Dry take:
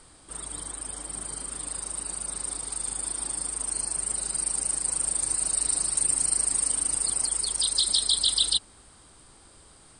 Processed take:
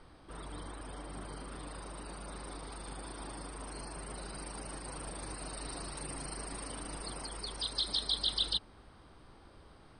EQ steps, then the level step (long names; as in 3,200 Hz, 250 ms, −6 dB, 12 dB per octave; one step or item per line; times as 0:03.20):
Savitzky-Golay smoothing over 15 samples
high-shelf EQ 2,700 Hz −11 dB
0.0 dB